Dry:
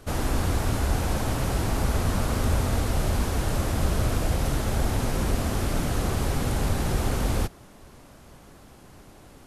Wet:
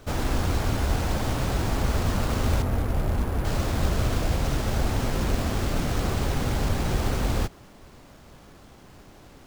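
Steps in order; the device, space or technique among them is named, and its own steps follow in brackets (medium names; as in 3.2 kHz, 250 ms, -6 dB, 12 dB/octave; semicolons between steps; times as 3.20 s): 2.62–3.45 s: distance through air 480 m; early companding sampler (sample-rate reducer 12 kHz; companded quantiser 6-bit)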